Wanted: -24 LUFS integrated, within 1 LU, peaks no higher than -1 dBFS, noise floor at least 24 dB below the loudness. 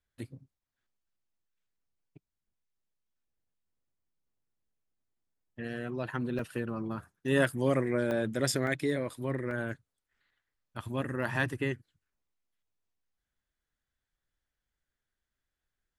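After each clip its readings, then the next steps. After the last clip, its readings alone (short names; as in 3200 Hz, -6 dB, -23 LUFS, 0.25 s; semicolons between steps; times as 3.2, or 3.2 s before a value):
dropouts 4; longest dropout 1.8 ms; loudness -32.5 LUFS; peak -12.5 dBFS; loudness target -24.0 LUFS
-> interpolate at 6.39/8.11/8.67/9.51, 1.8 ms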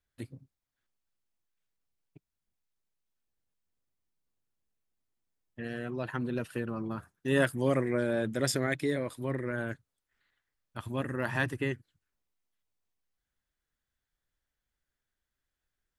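dropouts 0; loudness -32.5 LUFS; peak -12.5 dBFS; loudness target -24.0 LUFS
-> gain +8.5 dB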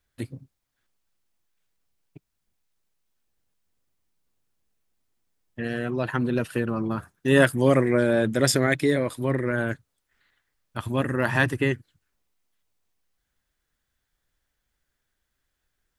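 loudness -24.0 LUFS; peak -4.0 dBFS; noise floor -79 dBFS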